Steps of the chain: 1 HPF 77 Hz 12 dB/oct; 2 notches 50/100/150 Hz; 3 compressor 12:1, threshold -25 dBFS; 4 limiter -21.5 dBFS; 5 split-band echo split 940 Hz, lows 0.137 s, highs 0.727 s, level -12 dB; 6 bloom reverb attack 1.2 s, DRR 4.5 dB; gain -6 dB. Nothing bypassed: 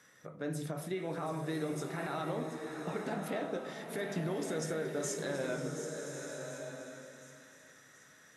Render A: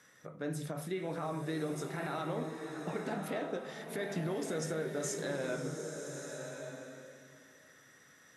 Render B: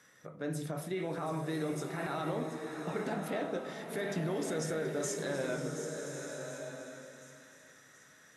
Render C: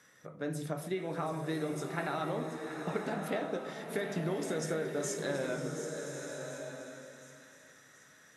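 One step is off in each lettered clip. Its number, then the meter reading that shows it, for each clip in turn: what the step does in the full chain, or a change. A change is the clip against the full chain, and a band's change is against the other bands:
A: 5, momentary loudness spread change -4 LU; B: 3, mean gain reduction 2.5 dB; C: 4, crest factor change +4.0 dB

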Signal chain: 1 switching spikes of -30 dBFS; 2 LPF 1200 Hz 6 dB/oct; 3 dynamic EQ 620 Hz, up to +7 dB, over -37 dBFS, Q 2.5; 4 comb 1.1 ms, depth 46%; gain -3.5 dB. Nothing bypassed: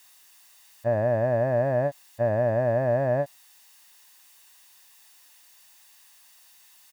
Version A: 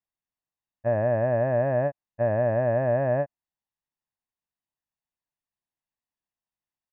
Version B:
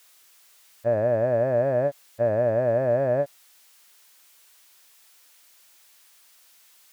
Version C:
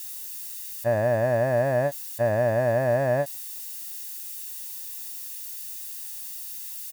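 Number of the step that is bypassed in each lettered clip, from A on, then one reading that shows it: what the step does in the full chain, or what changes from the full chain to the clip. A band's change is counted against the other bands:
1, distortion -8 dB; 4, 500 Hz band +3.5 dB; 2, 2 kHz band +4.5 dB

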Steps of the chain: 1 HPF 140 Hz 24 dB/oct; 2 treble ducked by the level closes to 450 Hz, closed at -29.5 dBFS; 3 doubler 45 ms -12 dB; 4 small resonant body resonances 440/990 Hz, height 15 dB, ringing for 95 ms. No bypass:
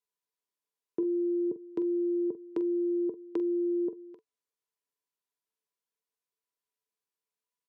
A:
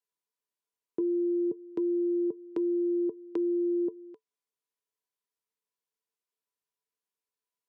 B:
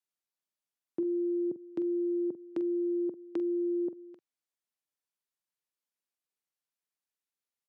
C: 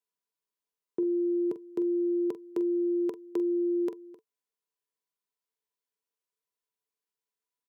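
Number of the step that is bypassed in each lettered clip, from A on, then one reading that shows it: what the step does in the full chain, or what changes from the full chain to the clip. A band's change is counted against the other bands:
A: 3, loudness change +1.0 LU; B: 4, crest factor change -2.0 dB; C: 2, loudness change +1.5 LU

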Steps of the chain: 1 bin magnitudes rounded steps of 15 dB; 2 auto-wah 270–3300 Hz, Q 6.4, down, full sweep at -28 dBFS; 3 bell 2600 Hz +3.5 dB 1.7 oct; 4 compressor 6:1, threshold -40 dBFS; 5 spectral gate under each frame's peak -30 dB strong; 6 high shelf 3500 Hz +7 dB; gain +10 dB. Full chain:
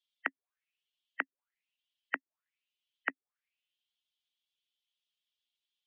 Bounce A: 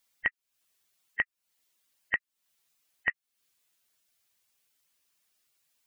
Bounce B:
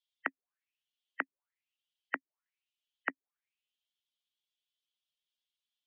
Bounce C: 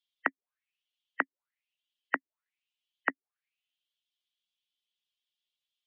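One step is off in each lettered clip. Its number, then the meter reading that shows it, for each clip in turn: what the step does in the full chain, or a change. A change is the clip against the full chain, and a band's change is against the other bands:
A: 2, 2 kHz band +9.5 dB; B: 3, 2 kHz band -2.5 dB; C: 4, mean gain reduction 5.0 dB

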